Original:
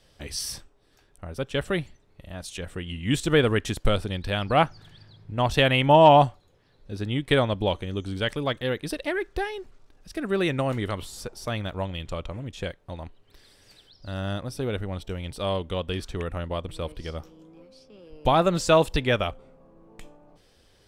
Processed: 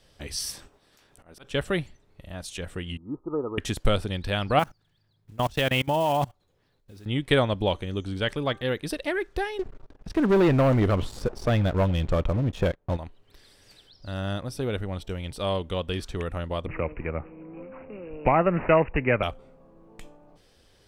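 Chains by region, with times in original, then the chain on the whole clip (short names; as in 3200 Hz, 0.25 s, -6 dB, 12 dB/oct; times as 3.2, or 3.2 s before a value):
0.5–1.44 spectral limiter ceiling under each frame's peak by 16 dB + auto swell 0.332 s
2.97–3.58 rippled Chebyshev low-pass 1300 Hz, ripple 9 dB + low shelf 310 Hz -11.5 dB
4.59–7.06 block floating point 5-bit + level quantiser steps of 23 dB
8.03–8.68 high shelf 6300 Hz -4.5 dB + de-hum 393.1 Hz, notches 4
9.59–12.97 LPF 1000 Hz 6 dB/oct + sample leveller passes 3
16.66–19.23 LPF 4900 Hz + careless resampling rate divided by 8×, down none, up filtered + three-band squash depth 40%
whole clip: dry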